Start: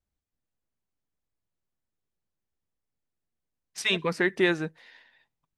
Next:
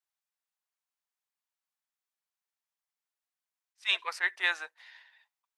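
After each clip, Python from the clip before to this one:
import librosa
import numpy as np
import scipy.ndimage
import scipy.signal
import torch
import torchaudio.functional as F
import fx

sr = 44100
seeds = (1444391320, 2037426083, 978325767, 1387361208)

y = scipy.signal.sosfilt(scipy.signal.butter(4, 810.0, 'highpass', fs=sr, output='sos'), x)
y = fx.attack_slew(y, sr, db_per_s=420.0)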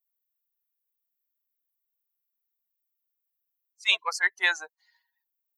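y = fx.bin_expand(x, sr, power=2.0)
y = fx.peak_eq(y, sr, hz=6600.0, db=9.5, octaves=0.51)
y = fx.band_squash(y, sr, depth_pct=40)
y = y * 10.0 ** (7.5 / 20.0)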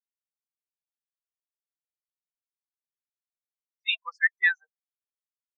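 y = fx.spectral_expand(x, sr, expansion=2.5)
y = y * 10.0 ** (-3.5 / 20.0)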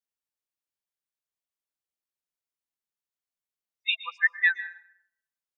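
y = fx.rev_plate(x, sr, seeds[0], rt60_s=0.71, hf_ratio=0.6, predelay_ms=110, drr_db=14.0)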